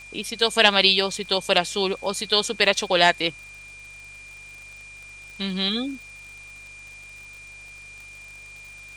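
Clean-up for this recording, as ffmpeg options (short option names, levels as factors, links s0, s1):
-af "adeclick=t=4,bandreject=f=49.6:t=h:w=4,bandreject=f=99.2:t=h:w=4,bandreject=f=148.8:t=h:w=4,bandreject=f=2400:w=30,afwtdn=0.0032"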